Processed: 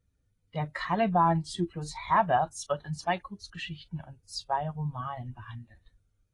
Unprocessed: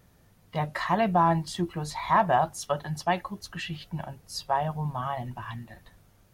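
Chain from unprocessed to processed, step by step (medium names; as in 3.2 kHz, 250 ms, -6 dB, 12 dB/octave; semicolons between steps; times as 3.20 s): expander on every frequency bin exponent 1.5; AAC 32 kbps 22.05 kHz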